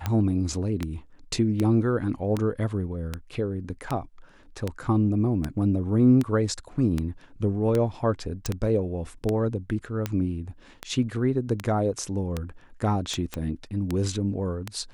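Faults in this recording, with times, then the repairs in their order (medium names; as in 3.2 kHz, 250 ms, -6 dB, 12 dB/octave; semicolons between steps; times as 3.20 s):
tick 78 rpm -13 dBFS
8.46 s: pop
13.34 s: pop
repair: de-click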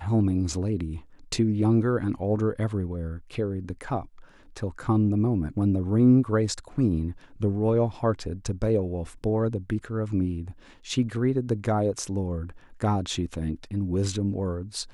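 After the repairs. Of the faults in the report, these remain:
13.34 s: pop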